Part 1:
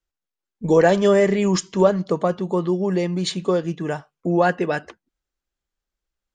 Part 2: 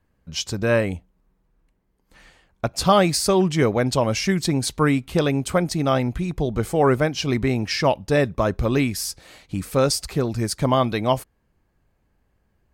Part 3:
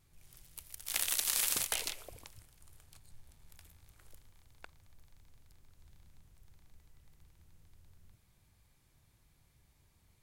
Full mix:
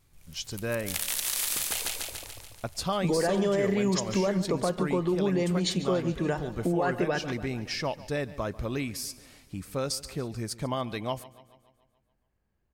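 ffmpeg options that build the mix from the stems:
-filter_complex "[0:a]alimiter=limit=-14dB:level=0:latency=1,adelay=2400,volume=1dB,asplit=2[a][b];[b]volume=-16dB[c];[1:a]adynamicequalizer=threshold=0.0282:dfrequency=1700:dqfactor=0.7:tfrequency=1700:tqfactor=0.7:attack=5:release=100:ratio=0.375:range=1.5:mode=boostabove:tftype=highshelf,volume=-10.5dB,asplit=2[d][e];[e]volume=-20dB[f];[2:a]acontrast=72,volume=-3dB,asplit=2[g][h];[h]volume=-3.5dB[i];[c][f][i]amix=inputs=3:normalize=0,aecho=0:1:143|286|429|572|715|858|1001|1144:1|0.56|0.314|0.176|0.0983|0.0551|0.0308|0.0173[j];[a][d][g][j]amix=inputs=4:normalize=0,acompressor=threshold=-27dB:ratio=2"

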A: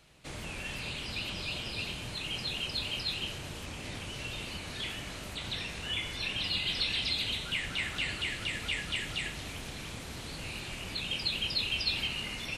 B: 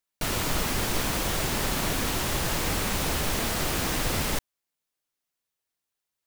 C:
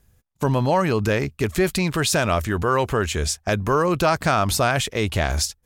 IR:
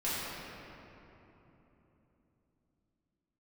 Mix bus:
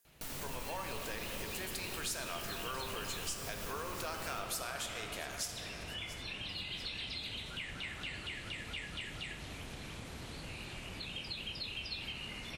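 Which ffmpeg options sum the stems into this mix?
-filter_complex "[0:a]highshelf=f=4.3k:g=-12,adelay=50,volume=-1dB[a];[1:a]volume=-17.5dB,asplit=2[b][c];[c]volume=-6dB[d];[2:a]highpass=340,tiltshelf=f=970:g=-4,volume=-16dB,asplit=4[e][f][g][h];[f]volume=-8dB[i];[g]volume=-16.5dB[j];[h]apad=whole_len=276451[k];[b][k]sidechaincompress=threshold=-42dB:ratio=8:attack=44:release=169[l];[3:a]atrim=start_sample=2205[m];[d][i]amix=inputs=2:normalize=0[n];[n][m]afir=irnorm=-1:irlink=0[o];[j]aecho=0:1:683|1366|2049|2732|3415|4098:1|0.46|0.212|0.0973|0.0448|0.0206[p];[a][l][e][o][p]amix=inputs=5:normalize=0,highshelf=f=6.3k:g=9,acompressor=threshold=-44dB:ratio=2"

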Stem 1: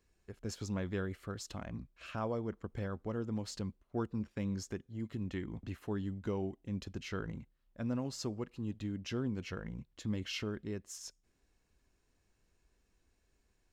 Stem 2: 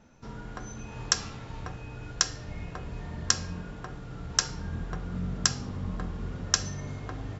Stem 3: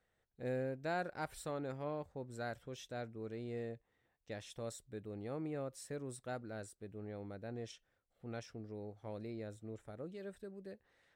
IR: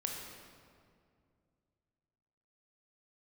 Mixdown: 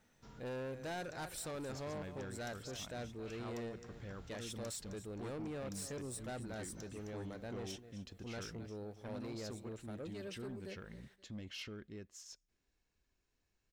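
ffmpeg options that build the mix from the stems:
-filter_complex "[0:a]equalizer=f=11k:w=0.94:g=-13.5,adelay=1250,volume=-8.5dB[a];[1:a]acompressor=threshold=-34dB:ratio=6,volume=-15.5dB,asplit=2[b][c];[c]volume=-8dB[d];[2:a]volume=2dB,asplit=3[e][f][g];[f]volume=-16dB[h];[g]apad=whole_len=326029[i];[b][i]sidechaincompress=threshold=-59dB:ratio=8:attack=16:release=153[j];[d][h]amix=inputs=2:normalize=0,aecho=0:1:263|526|789|1052:1|0.31|0.0961|0.0298[k];[a][j][e][k]amix=inputs=4:normalize=0,highshelf=f=2.3k:g=8,asoftclip=type=tanh:threshold=-39dB"

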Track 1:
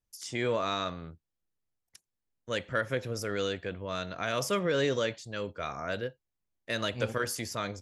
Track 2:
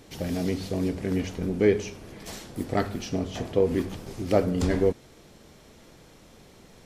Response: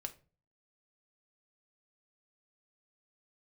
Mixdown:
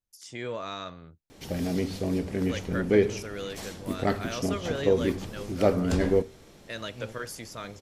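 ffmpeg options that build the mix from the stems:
-filter_complex "[0:a]volume=-5dB[a];[1:a]adelay=1300,volume=-3.5dB,asplit=2[b][c];[c]volume=-5dB[d];[2:a]atrim=start_sample=2205[e];[d][e]afir=irnorm=-1:irlink=0[f];[a][b][f]amix=inputs=3:normalize=0"

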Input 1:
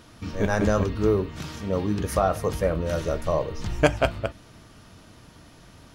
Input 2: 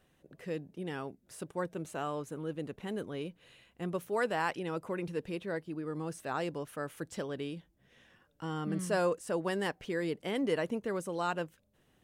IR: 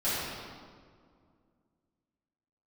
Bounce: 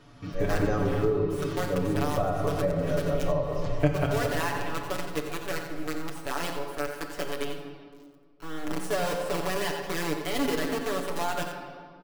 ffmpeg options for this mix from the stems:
-filter_complex "[0:a]lowpass=f=3k:p=1,volume=-6.5dB,asplit=2[a][b];[b]volume=-12dB[c];[1:a]highpass=f=210:w=0.5412,highpass=f=210:w=1.3066,acrusher=bits=6:dc=4:mix=0:aa=0.000001,volume=0.5dB,asplit=3[d][e][f];[e]volume=-14.5dB[g];[f]volume=-9dB[h];[2:a]atrim=start_sample=2205[i];[c][g]amix=inputs=2:normalize=0[j];[j][i]afir=irnorm=-1:irlink=0[k];[h]aecho=0:1:89:1[l];[a][d][k][l]amix=inputs=4:normalize=0,aecho=1:1:7:0.88,acrossover=split=300[m][n];[n]acompressor=threshold=-26dB:ratio=4[o];[m][o]amix=inputs=2:normalize=0"

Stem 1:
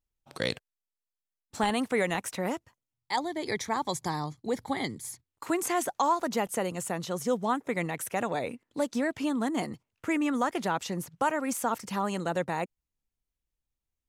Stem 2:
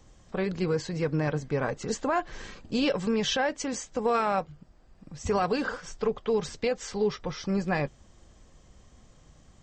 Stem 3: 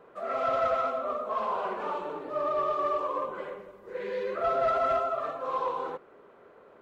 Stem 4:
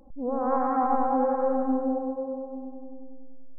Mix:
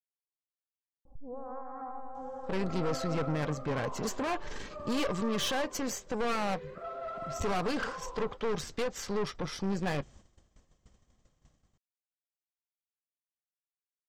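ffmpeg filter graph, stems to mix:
-filter_complex "[1:a]agate=range=-8dB:threshold=-51dB:ratio=16:detection=peak,aeval=exprs='(tanh(35.5*val(0)+0.7)-tanh(0.7))/35.5':c=same,adelay=2150,volume=2.5dB[a];[2:a]adelay=2400,volume=-13.5dB[b];[3:a]lowshelf=f=180:t=q:w=3:g=7,acompressor=threshold=-30dB:ratio=12,adelay=1050,volume=-7.5dB[c];[a][b][c]amix=inputs=3:normalize=0,agate=range=-33dB:threshold=-57dB:ratio=3:detection=peak"

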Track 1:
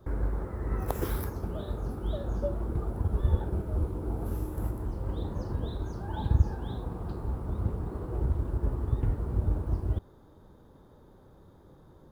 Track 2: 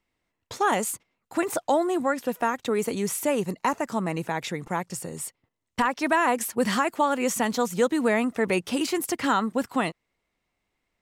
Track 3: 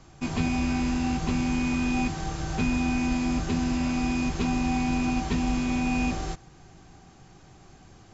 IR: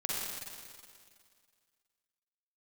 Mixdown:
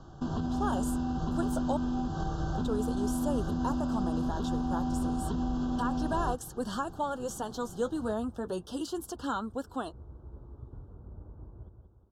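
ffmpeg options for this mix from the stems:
-filter_complex "[0:a]lowpass=1.9k,bandreject=f=50:t=h:w=6,bandreject=f=100:t=h:w=6,adelay=1700,volume=-18dB,asplit=2[a][b];[b]volume=-6.5dB[c];[1:a]dynaudnorm=f=350:g=3:m=12dB,flanger=delay=2:depth=7.6:regen=-48:speed=0.31:shape=triangular,volume=-15dB,asplit=3[d][e][f];[d]atrim=end=1.77,asetpts=PTS-STARTPTS,afade=t=out:st=1.766:d=0.004:c=hsin[g];[e]atrim=start=1.77:end=2.55,asetpts=PTS-STARTPTS,volume=0[h];[f]atrim=start=2.55,asetpts=PTS-STARTPTS,afade=t=in:d=0.004:c=hsin[i];[g][h][i]concat=n=3:v=0:a=1,asplit=2[j][k];[2:a]aemphasis=mode=reproduction:type=75fm,alimiter=level_in=1.5dB:limit=-24dB:level=0:latency=1:release=202,volume=-1.5dB,volume=2dB[l];[k]apad=whole_len=609366[m];[a][m]sidechaincompress=threshold=-35dB:ratio=8:attack=16:release=486[n];[c]aecho=0:1:180|360|540|720|900|1080:1|0.45|0.202|0.0911|0.041|0.0185[o];[n][j][l][o]amix=inputs=4:normalize=0,asuperstop=centerf=2200:order=8:qfactor=1.6,highshelf=f=9.6k:g=-7"

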